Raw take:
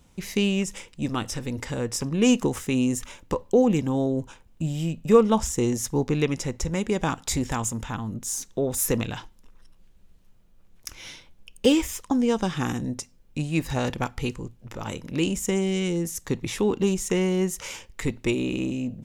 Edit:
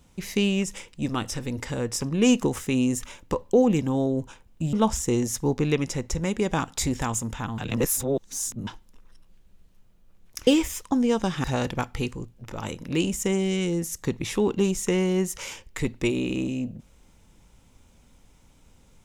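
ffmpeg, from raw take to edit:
-filter_complex "[0:a]asplit=6[s0][s1][s2][s3][s4][s5];[s0]atrim=end=4.732[s6];[s1]atrim=start=5.228:end=8.082[s7];[s2]atrim=start=8.078:end=9.172,asetpts=PTS-STARTPTS,areverse[s8];[s3]atrim=start=9.168:end=10.972[s9];[s4]atrim=start=11.658:end=12.632[s10];[s5]atrim=start=13.668[s11];[s6][s7]acrossfade=d=0.004:c1=hsin:c2=hsin[s12];[s12][s8]acrossfade=d=0.004:c1=hsin:c2=hsin[s13];[s13][s9]acrossfade=d=0.004:c1=hsin:c2=hsin[s14];[s14][s10]acrossfade=d=0.004:c1=hsin:c2=hsin[s15];[s15][s11]acrossfade=d=0.004:c1=hsin:c2=hsin"

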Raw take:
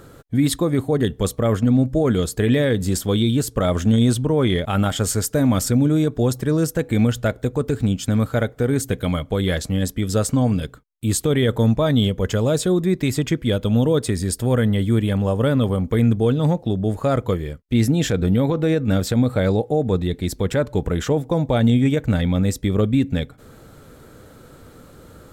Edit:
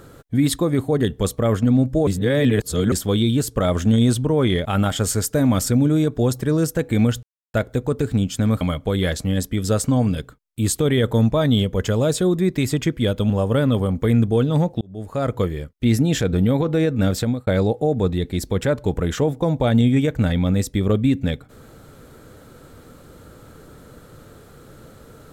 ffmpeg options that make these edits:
-filter_complex "[0:a]asplit=8[s0][s1][s2][s3][s4][s5][s6][s7];[s0]atrim=end=2.072[s8];[s1]atrim=start=2.068:end=2.922,asetpts=PTS-STARTPTS,areverse[s9];[s2]atrim=start=2.918:end=7.23,asetpts=PTS-STARTPTS,afade=t=out:st=4.308:d=0.004:c=hsin,apad=pad_dur=0.31[s10];[s3]atrim=start=7.23:end=8.302,asetpts=PTS-STARTPTS,afade=t=in:d=0.004:c=hsin[s11];[s4]atrim=start=9.058:end=13.752[s12];[s5]atrim=start=15.188:end=16.7,asetpts=PTS-STARTPTS,afade=t=out:st=1.508:d=0.004:c=hsin[s13];[s6]atrim=start=16.7:end=19.36,asetpts=PTS-STARTPTS,afade=t=in:d=0.59,afade=t=out:st=2.39:d=0.27[s14];[s7]atrim=start=19.36,asetpts=PTS-STARTPTS,afade=t=in:d=0.004:c=hsin[s15];[s8][s9]acrossfade=d=0.004:c1=hsin:c2=hsin[s16];[s10][s11]concat=n=2:v=0:a=1[s17];[s16][s17]acrossfade=d=0.004:c1=hsin:c2=hsin[s18];[s18][s12]acrossfade=d=0.004:c1=hsin:c2=hsin[s19];[s13][s14][s15]concat=n=3:v=0:a=1[s20];[s19][s20]acrossfade=d=0.004:c1=hsin:c2=hsin"

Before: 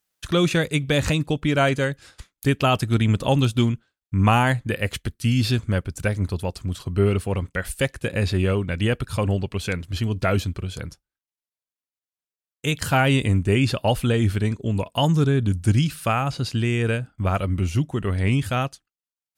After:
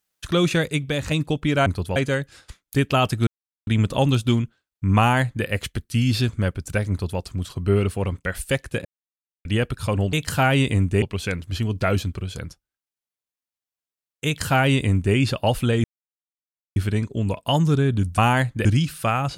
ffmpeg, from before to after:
-filter_complex "[0:a]asplit=12[s0][s1][s2][s3][s4][s5][s6][s7][s8][s9][s10][s11];[s0]atrim=end=1.11,asetpts=PTS-STARTPTS,afade=t=out:st=0.66:d=0.45:silence=0.398107[s12];[s1]atrim=start=1.11:end=1.662,asetpts=PTS-STARTPTS,afade=t=in:d=0.004:c=hsin:silence=0.398107[s13];[s2]atrim=start=6.198:end=6.502[s14];[s3]atrim=start=1.658:end=2.97,asetpts=PTS-STARTPTS,afade=t=out:st=1.308:d=0.004:c=hsin,apad=pad_dur=0.4[s15];[s4]atrim=start=2.97:end=8.15,asetpts=PTS-STARTPTS,afade=t=in:d=0.004:c=hsin,afade=t=out:st=5.176:d=0.004:c=hsin[s16];[s5]atrim=start=8.15:end=8.75,asetpts=PTS-STARTPTS,volume=0[s17];[s6]atrim=start=8.75:end=9.432,asetpts=PTS-STARTPTS,afade=t=in:d=0.004:c=hsin[s18];[s7]atrim=start=12.668:end=13.562[s19];[s8]atrim=start=9.428:end=14.25,asetpts=PTS-STARTPTS,afade=t=out:st=4.818:d=0.004:c=hsin,apad=pad_dur=0.92[s20];[s9]atrim=start=14.25:end=15.672,asetpts=PTS-STARTPTS,afade=t=in:d=0.004:c=hsin[s21];[s10]atrim=start=4.278:end=4.752[s22];[s11]atrim=start=15.668[s23];[s12][s13]concat=n=2:v=0:a=1[s24];[s24][s14]acrossfade=d=0.004:c1=hsin:c2=hsin[s25];[s15][s16][s17][s18]concat=n=4:v=0:a=1[s26];[s25][s26]acrossfade=d=0.004:c1=hsin:c2=hsin[s27];[s27][s19]acrossfade=d=0.004:c1=hsin:c2=hsin[s28];[s20][s21]concat=n=2:v=0:a=1[s29];[s28][s29]acrossfade=d=0.004:c1=hsin:c2=hsin[s30];[s30][s22]acrossfade=d=0.004:c1=hsin:c2=hsin[s31];[s31][s23]acrossfade=d=0.004:c1=hsin:c2=hsin"

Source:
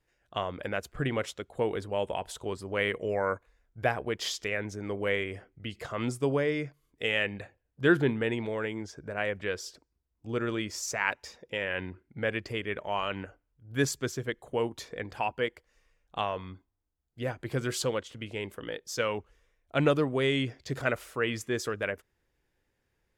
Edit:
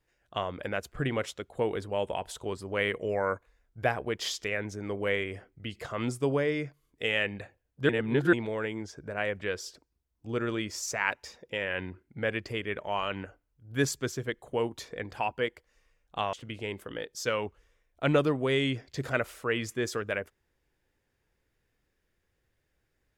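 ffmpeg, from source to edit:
-filter_complex "[0:a]asplit=4[s0][s1][s2][s3];[s0]atrim=end=7.892[s4];[s1]atrim=start=7.888:end=8.332,asetpts=PTS-STARTPTS,areverse[s5];[s2]atrim=start=8.328:end=16.332[s6];[s3]atrim=start=18.048[s7];[s4][s5]acrossfade=d=0.004:c1=hsin:c2=hsin[s8];[s8][s6]acrossfade=d=0.004:c1=hsin:c2=hsin[s9];[s9][s7]acrossfade=d=0.004:c1=hsin:c2=hsin"

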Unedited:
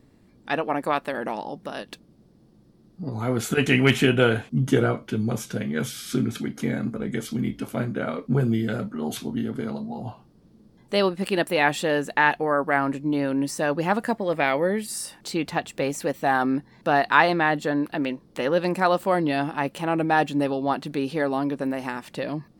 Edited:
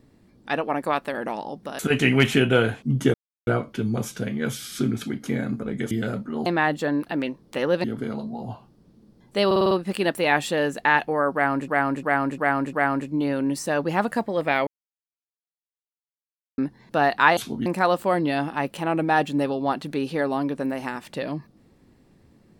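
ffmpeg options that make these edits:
-filter_complex "[0:a]asplit=19[s0][s1][s2][s3][s4][s5][s6][s7][s8][s9][s10][s11][s12][s13][s14][s15][s16][s17][s18];[s0]atrim=end=1.792[s19];[s1]atrim=start=3.458:end=4.81,asetpts=PTS-STARTPTS,afade=t=out:st=1.348:d=0.004:c=hsin,apad=pad_dur=0.33[s20];[s2]atrim=start=4.81:end=7.252,asetpts=PTS-STARTPTS,afade=t=in:d=0.004:c=hsin[s21];[s3]atrim=start=8.568:end=9.122[s22];[s4]atrim=start=17.288:end=18.672[s23];[s5]atrim=start=9.408:end=11.082[s24];[s6]atrim=start=11.028:end=11.082[s25];[s7]atrim=start=11.028:end=11.082[s26];[s8]atrim=start=11.028:end=11.082[s27];[s9]atrim=start=11.028:end=11.082[s28];[s10]atrim=start=11.028:end=13.002[s29];[s11]atrim=start=12.648:end=13.002[s30];[s12]atrim=start=12.648:end=13.002[s31];[s13]atrim=start=12.648:end=13.002[s32];[s14]atrim=start=12.648:end=14.59,asetpts=PTS-STARTPTS,afade=t=out:st=1.938:d=0.004:c=hsin[s33];[s15]atrim=start=14.59:end=16.5,asetpts=PTS-STARTPTS,volume=0[s34];[s16]atrim=start=16.5:end=17.292,asetpts=PTS-STARTPTS,afade=t=in:d=0.004:c=hsin[s35];[s17]atrim=start=9.118:end=9.412[s36];[s18]atrim=start=18.668[s37];[s20][s21]concat=n=2:v=0:a=1[s38];[s19][s38]acrossfade=d=0.004:c1=hsin:c2=hsin[s39];[s39][s22]acrossfade=d=0.004:c1=hsin:c2=hsin[s40];[s40][s23]acrossfade=d=0.004:c1=hsin:c2=hsin[s41];[s41][s24]acrossfade=d=0.004:c1=hsin:c2=hsin[s42];[s42][s25]acrossfade=d=0.004:c1=hsin:c2=hsin[s43];[s43][s26]acrossfade=d=0.004:c1=hsin:c2=hsin[s44];[s44][s27]acrossfade=d=0.004:c1=hsin:c2=hsin[s45];[s45][s28]acrossfade=d=0.004:c1=hsin:c2=hsin[s46];[s46][s29]acrossfade=d=0.004:c1=hsin:c2=hsin[s47];[s47][s30]acrossfade=d=0.004:c1=hsin:c2=hsin[s48];[s48][s31]acrossfade=d=0.004:c1=hsin:c2=hsin[s49];[s49][s32]acrossfade=d=0.004:c1=hsin:c2=hsin[s50];[s33][s34][s35]concat=n=3:v=0:a=1[s51];[s50][s51]acrossfade=d=0.004:c1=hsin:c2=hsin[s52];[s52][s36]acrossfade=d=0.004:c1=hsin:c2=hsin[s53];[s53][s37]acrossfade=d=0.004:c1=hsin:c2=hsin"

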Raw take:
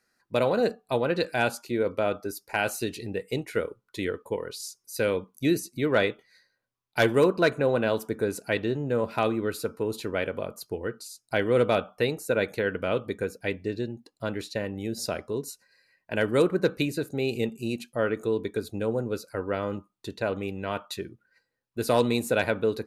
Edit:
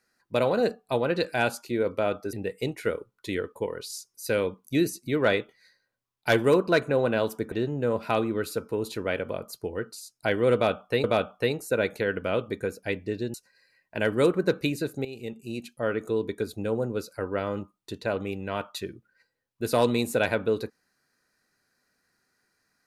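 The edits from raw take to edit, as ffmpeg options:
-filter_complex "[0:a]asplit=6[s0][s1][s2][s3][s4][s5];[s0]atrim=end=2.332[s6];[s1]atrim=start=3.028:end=8.222[s7];[s2]atrim=start=8.598:end=12.122[s8];[s3]atrim=start=11.618:end=13.922[s9];[s4]atrim=start=15.498:end=17.21,asetpts=PTS-STARTPTS,afade=t=out:st=1.708:d=0.004:c=hsin:silence=0.188365[s10];[s5]atrim=start=17.21,asetpts=PTS-STARTPTS,afade=t=in:d=1.39:c=qsin:silence=0.188365[s11];[s6][s7]acrossfade=d=0.004:c1=hsin:c2=hsin[s12];[s12][s8]acrossfade=d=0.004:c1=hsin:c2=hsin[s13];[s13][s9]acrossfade=d=0.004:c1=hsin:c2=hsin[s14];[s10][s11]concat=n=2:v=0:a=1[s15];[s14][s15]acrossfade=d=0.004:c1=hsin:c2=hsin"

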